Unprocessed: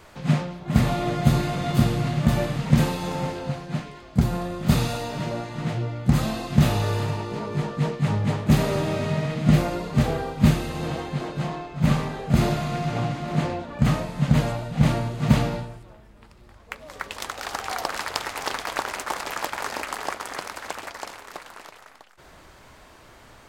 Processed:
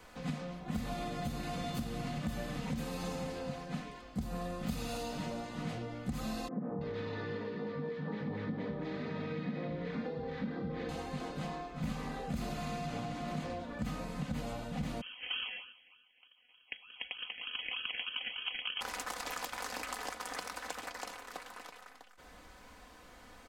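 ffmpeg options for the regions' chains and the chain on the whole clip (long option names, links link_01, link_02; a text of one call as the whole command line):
ffmpeg -i in.wav -filter_complex "[0:a]asettb=1/sr,asplit=3[link_01][link_02][link_03];[link_01]atrim=end=6.484[link_04];[link_02]atrim=start=6.48:end=10.89,asetpts=PTS-STARTPTS,afade=type=in:duration=0.004:curve=qsin,afade=type=out:start_time=4.406:duration=0.004:curve=qsin,acompressor=threshold=-21dB:ratio=2.5:attack=3.2:release=140:knee=1:detection=peak,highpass=120,equalizer=frequency=180:width_type=q:width=4:gain=5,equalizer=frequency=290:width_type=q:width=4:gain=4,equalizer=frequency=470:width_type=q:width=4:gain=6,equalizer=frequency=710:width_type=q:width=4:gain=-3,equalizer=frequency=1800:width_type=q:width=4:gain=5,equalizer=frequency=2800:width_type=q:width=4:gain=-9,lowpass=frequency=3600:width=0.5412,lowpass=frequency=3600:width=1.3066,acrossover=split=180|1100[link_05][link_06][link_07];[link_05]adelay=200[link_08];[link_07]adelay=330[link_09];[link_08][link_06][link_09]amix=inputs=3:normalize=0,atrim=end_sample=194481[link_10];[link_03]atrim=start=10.886[link_11];[link_04][link_10]acrossfade=duration=0.004:curve1=hsin:curve2=qsin[link_12];[link_12][link_11]acrossfade=duration=0.004:curve1=qsin:curve2=hsin,asettb=1/sr,asplit=3[link_13][link_14][link_15];[link_13]atrim=end=15.014[link_16];[link_14]atrim=start=15.01:end=18.81,asetpts=PTS-STARTPTS,afade=type=in:duration=0.004:curve=qsin,afade=type=out:start_time=3.796:duration=0.004:curve=qsin,highpass=frequency=1200:poles=1,acrusher=samples=28:mix=1:aa=0.000001:lfo=1:lforange=16.8:lforate=3.3,lowpass=frequency=2800:width_type=q:width=0.5098,lowpass=frequency=2800:width_type=q:width=0.6013,lowpass=frequency=2800:width_type=q:width=0.9,lowpass=frequency=2800:width_type=q:width=2.563,afreqshift=-3300[link_17];[link_15]atrim=start=18.806[link_18];[link_16][link_17]acrossfade=duration=0.004:curve1=hsin:curve2=qsin[link_19];[link_19][link_18]acrossfade=duration=0.004:curve1=qsin:curve2=hsin,acompressor=threshold=-24dB:ratio=6,aecho=1:1:4:0.65,acrossover=split=170|3000[link_20][link_21][link_22];[link_21]acompressor=threshold=-30dB:ratio=6[link_23];[link_20][link_23][link_22]amix=inputs=3:normalize=0,volume=-7.5dB" out.wav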